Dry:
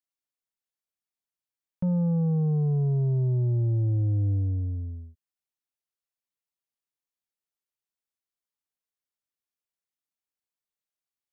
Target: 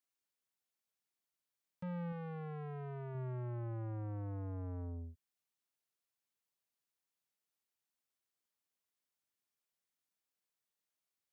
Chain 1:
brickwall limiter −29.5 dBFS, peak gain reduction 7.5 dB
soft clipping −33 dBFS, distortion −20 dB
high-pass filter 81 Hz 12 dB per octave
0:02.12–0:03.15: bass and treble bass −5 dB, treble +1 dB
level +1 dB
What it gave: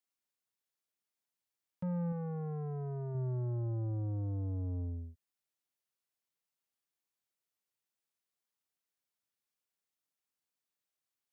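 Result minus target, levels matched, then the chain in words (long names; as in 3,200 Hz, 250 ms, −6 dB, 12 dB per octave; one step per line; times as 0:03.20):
soft clipping: distortion −7 dB
brickwall limiter −29.5 dBFS, peak gain reduction 7.5 dB
soft clipping −40.5 dBFS, distortion −13 dB
high-pass filter 81 Hz 12 dB per octave
0:02.12–0:03.15: bass and treble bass −5 dB, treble +1 dB
level +1 dB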